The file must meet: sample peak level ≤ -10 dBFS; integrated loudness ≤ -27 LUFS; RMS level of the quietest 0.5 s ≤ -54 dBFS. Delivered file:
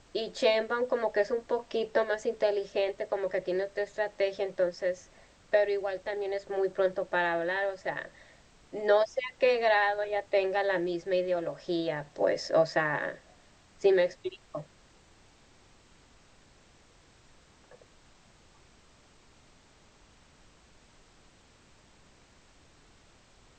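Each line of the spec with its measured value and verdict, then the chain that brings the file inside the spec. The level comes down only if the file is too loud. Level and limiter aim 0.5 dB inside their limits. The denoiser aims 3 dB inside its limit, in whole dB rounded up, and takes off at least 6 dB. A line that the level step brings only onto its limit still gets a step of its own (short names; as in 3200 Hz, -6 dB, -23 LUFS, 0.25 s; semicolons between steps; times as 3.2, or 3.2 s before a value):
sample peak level -12.0 dBFS: OK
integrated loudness -29.5 LUFS: OK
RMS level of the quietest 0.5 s -60 dBFS: OK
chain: none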